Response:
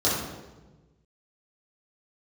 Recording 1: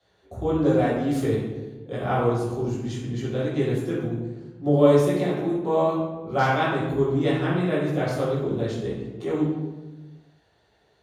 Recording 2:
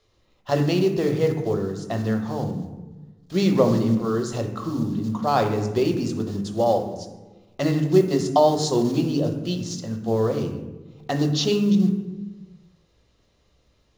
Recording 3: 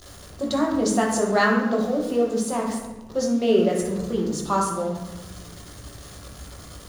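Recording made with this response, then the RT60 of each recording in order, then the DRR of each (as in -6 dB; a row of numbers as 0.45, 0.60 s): 1; 1.2, 1.2, 1.2 s; -9.5, 4.5, -2.0 dB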